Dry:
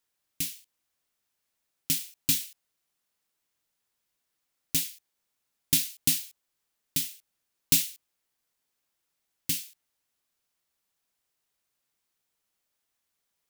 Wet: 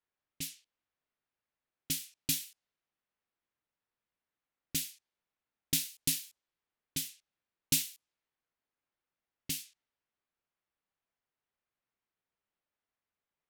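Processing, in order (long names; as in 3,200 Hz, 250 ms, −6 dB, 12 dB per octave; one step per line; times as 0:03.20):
low-pass that shuts in the quiet parts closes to 2,300 Hz, open at −27.5 dBFS
level −5 dB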